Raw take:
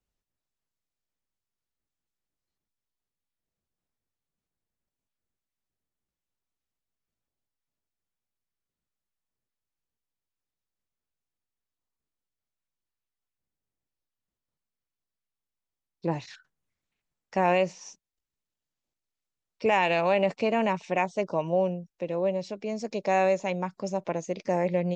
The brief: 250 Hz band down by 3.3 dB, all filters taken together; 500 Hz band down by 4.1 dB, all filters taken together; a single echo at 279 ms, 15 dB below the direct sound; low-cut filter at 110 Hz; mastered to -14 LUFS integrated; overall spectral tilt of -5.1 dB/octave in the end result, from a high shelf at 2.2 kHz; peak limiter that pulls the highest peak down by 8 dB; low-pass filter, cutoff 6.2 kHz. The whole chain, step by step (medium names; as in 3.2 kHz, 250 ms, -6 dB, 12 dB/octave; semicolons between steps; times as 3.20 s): high-pass 110 Hz; low-pass 6.2 kHz; peaking EQ 250 Hz -3.5 dB; peaking EQ 500 Hz -4 dB; treble shelf 2.2 kHz -3.5 dB; peak limiter -21 dBFS; delay 279 ms -15 dB; trim +19.5 dB